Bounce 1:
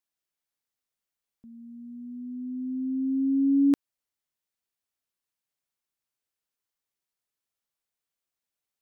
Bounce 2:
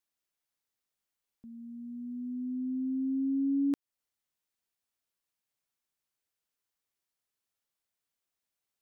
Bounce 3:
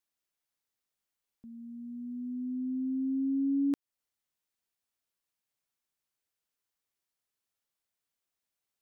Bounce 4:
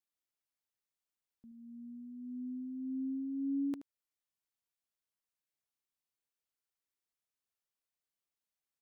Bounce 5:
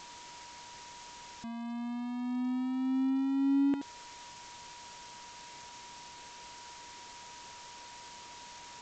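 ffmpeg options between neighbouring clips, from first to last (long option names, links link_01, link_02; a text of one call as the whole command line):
ffmpeg -i in.wav -af "acompressor=threshold=-33dB:ratio=2" out.wav
ffmpeg -i in.wav -af anull out.wav
ffmpeg -i in.wav -af "aecho=1:1:76:0.224,volume=-7dB" out.wav
ffmpeg -i in.wav -af "aeval=exprs='val(0)+0.5*0.00631*sgn(val(0))':channel_layout=same,aeval=exprs='val(0)+0.00158*sin(2*PI*960*n/s)':channel_layout=same,volume=6dB" -ar 16000 -c:a g722 out.g722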